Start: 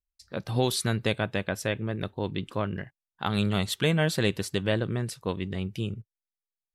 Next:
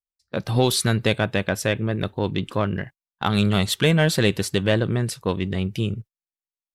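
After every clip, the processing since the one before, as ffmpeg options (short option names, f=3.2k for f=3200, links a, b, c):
-filter_complex "[0:a]agate=range=-23dB:threshold=-46dB:ratio=16:detection=peak,asplit=2[a][b];[b]asoftclip=type=tanh:threshold=-25.5dB,volume=-7.5dB[c];[a][c]amix=inputs=2:normalize=0,volume=4.5dB"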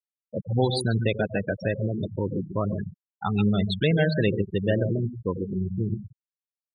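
-af "aecho=1:1:88|141:0.299|0.422,afftfilt=real='re*gte(hypot(re,im),0.178)':imag='im*gte(hypot(re,im),0.178)':win_size=1024:overlap=0.75,volume=-3.5dB"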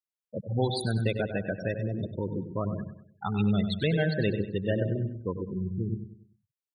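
-af "aecho=1:1:97|194|291|388:0.282|0.118|0.0497|0.0209,volume=-4.5dB"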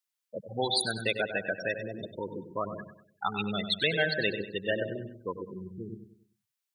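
-af "highpass=f=1.4k:p=1,volume=8dB"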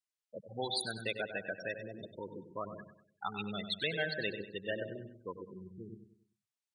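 -af "aresample=22050,aresample=44100,volume=-7.5dB"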